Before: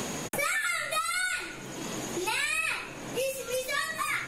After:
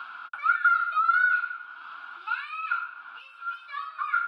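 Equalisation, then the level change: resonant high-pass 1400 Hz, resonance Q 15; tape spacing loss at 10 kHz 35 dB; fixed phaser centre 1900 Hz, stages 6; -1.5 dB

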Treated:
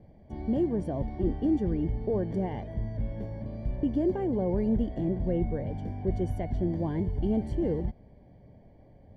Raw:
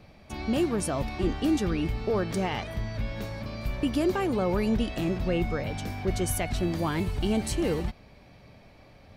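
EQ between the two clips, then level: running mean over 34 samples; 0.0 dB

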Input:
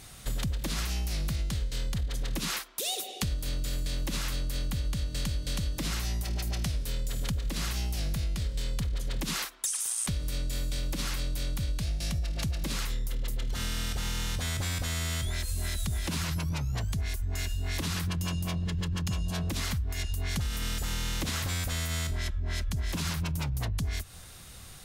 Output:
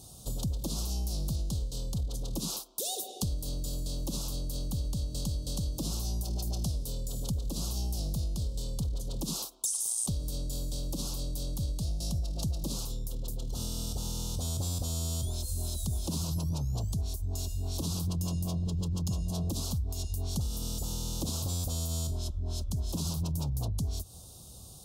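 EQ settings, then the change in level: HPF 46 Hz; Butterworth band-stop 1900 Hz, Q 0.55; 0.0 dB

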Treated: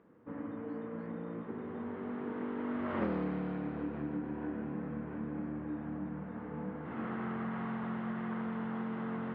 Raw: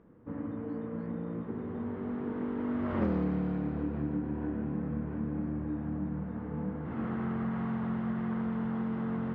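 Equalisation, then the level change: HPF 310 Hz 6 dB/oct; air absorption 320 m; high shelf 2300 Hz +11.5 dB; 0.0 dB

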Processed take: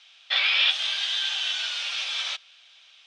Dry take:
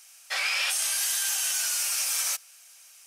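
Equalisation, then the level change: synth low-pass 3500 Hz, resonance Q 6.9; air absorption 80 m; 0.0 dB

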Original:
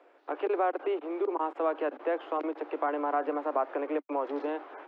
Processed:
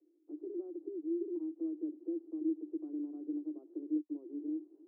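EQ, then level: Butterworth band-pass 320 Hz, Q 6.2; +2.5 dB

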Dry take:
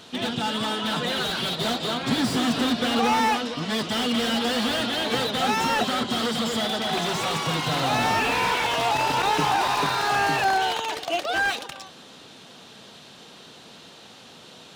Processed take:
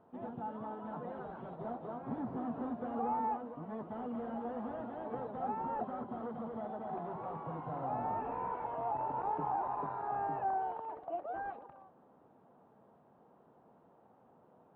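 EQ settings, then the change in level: ladder low-pass 1100 Hz, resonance 35%; -8.0 dB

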